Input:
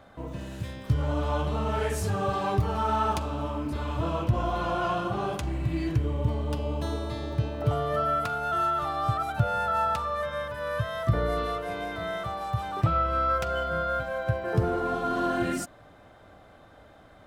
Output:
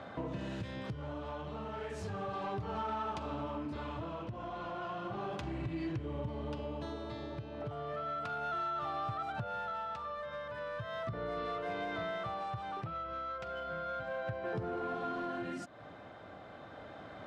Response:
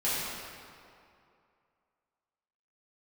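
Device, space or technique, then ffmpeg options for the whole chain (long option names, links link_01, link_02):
AM radio: -af "highpass=110,lowpass=4500,acompressor=threshold=-41dB:ratio=6,asoftclip=type=tanh:threshold=-35dB,tremolo=f=0.34:d=0.39,volume=6.5dB"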